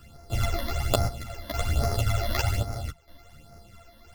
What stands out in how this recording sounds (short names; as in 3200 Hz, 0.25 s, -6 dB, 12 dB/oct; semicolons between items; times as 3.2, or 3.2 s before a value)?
a buzz of ramps at a fixed pitch in blocks of 64 samples; phasing stages 12, 1.2 Hz, lowest notch 130–3100 Hz; chopped level 0.65 Hz, depth 65%, duty 70%; a shimmering, thickened sound